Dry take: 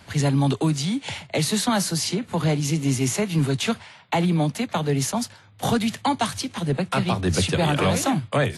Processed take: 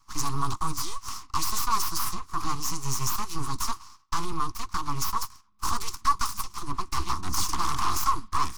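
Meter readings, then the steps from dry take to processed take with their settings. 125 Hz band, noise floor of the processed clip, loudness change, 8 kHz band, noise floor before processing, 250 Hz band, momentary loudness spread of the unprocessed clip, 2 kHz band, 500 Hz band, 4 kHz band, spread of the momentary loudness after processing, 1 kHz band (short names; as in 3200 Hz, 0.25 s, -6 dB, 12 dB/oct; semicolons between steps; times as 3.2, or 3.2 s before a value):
-14.0 dB, -56 dBFS, -6.5 dB, -2.5 dB, -50 dBFS, -17.5 dB, 6 LU, -10.0 dB, -21.0 dB, -6.0 dB, 8 LU, 0.0 dB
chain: gate -44 dBFS, range -10 dB; dynamic EQ 7900 Hz, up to +6 dB, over -43 dBFS, Q 0.73; full-wave rectifier; EQ curve 100 Hz 0 dB, 210 Hz -9 dB, 350 Hz -9 dB, 560 Hz -30 dB, 1100 Hz +12 dB, 1600 Hz -10 dB, 3600 Hz -9 dB, 5500 Hz +4 dB, 8300 Hz -3 dB; gain -1.5 dB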